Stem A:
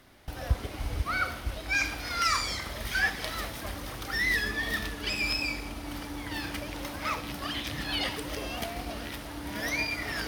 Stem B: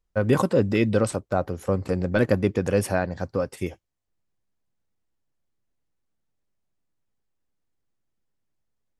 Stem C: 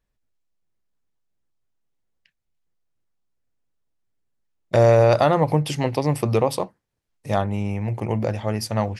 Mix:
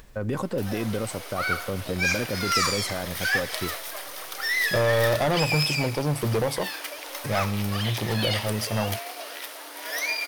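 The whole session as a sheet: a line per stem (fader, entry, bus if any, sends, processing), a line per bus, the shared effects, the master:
+2.0 dB, 0.30 s, no send, high-pass 450 Hz 24 dB/octave; treble shelf 6.8 kHz +8 dB; band-stop 830 Hz, Q 16
-2.5 dB, 0.00 s, no send, peak limiter -16 dBFS, peak gain reduction 9 dB
-0.5 dB, 0.00 s, no send, upward compressor, threshold -27 dBFS; saturation -18.5 dBFS, distortion -8 dB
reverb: none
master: none

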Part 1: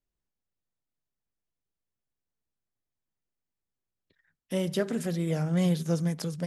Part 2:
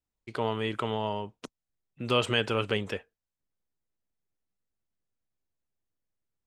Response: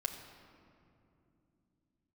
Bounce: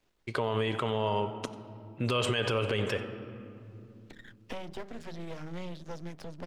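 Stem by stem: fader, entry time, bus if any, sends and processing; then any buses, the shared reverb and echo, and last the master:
-6.0 dB, 0.00 s, no send, no echo send, three-band isolator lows -13 dB, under 170 Hz, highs -23 dB, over 5.3 kHz; half-wave rectifier; three bands compressed up and down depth 100%; auto duck -18 dB, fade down 0.80 s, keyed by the second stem
+1.5 dB, 0.00 s, send -4 dB, echo send -17.5 dB, none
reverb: on, RT60 2.8 s, pre-delay 7 ms
echo: delay 92 ms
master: peak limiter -18.5 dBFS, peak gain reduction 11.5 dB

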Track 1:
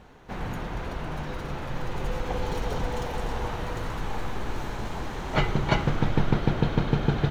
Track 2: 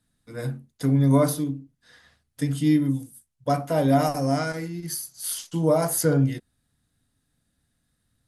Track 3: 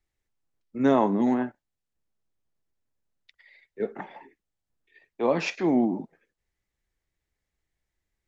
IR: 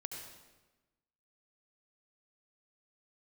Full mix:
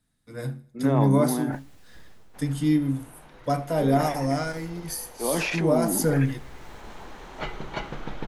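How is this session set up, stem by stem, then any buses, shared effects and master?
6.41 s -14 dB -> 6.90 s -7 dB, 2.05 s, no send, no echo send, peaking EQ 89 Hz -13 dB 1.7 oct
-2.0 dB, 0.00 s, no send, echo send -21 dB, none
-4.5 dB, 0.00 s, no send, no echo send, treble shelf 4.4 kHz -8 dB; decay stretcher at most 23 dB/s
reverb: none
echo: feedback delay 79 ms, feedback 45%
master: none

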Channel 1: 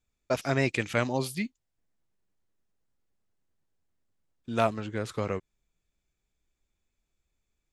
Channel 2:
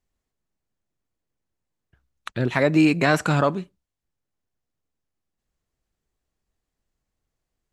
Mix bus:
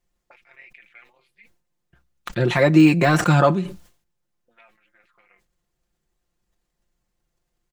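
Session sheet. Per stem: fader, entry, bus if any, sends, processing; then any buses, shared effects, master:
-10.0 dB, 0.00 s, no send, AM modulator 230 Hz, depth 75%; peaking EQ 5.9 kHz -8 dB 0.83 oct; auto-wah 420–2200 Hz, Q 3.5, up, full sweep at -32.5 dBFS
+2.5 dB, 0.00 s, no send, de-esser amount 80%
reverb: none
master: comb 5.7 ms; decay stretcher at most 120 dB/s

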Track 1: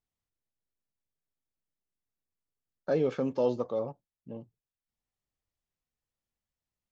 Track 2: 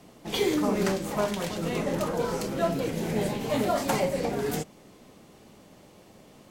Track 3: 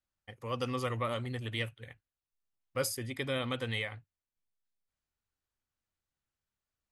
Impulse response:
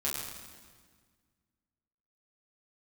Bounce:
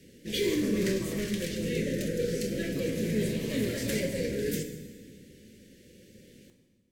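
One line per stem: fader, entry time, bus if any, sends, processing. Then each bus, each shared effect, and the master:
+1.0 dB, 0.00 s, bus A, send -15 dB, spectral blur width 577 ms; compression, threshold -40 dBFS, peak gain reduction 10 dB
-3.5 dB, 0.00 s, no bus, send -8 dB, hard clipper -21.5 dBFS, distortion -16 dB; elliptic band-stop 510–1700 Hz, stop band 40 dB
-6.0 dB, 0.00 s, bus A, send -7.5 dB, steep low-pass 1.1 kHz; compression, threshold -36 dBFS, peak gain reduction 8.5 dB
bus A: 0.0 dB, robot voice 324 Hz; peak limiter -43.5 dBFS, peak gain reduction 12 dB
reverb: on, RT60 1.6 s, pre-delay 7 ms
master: none

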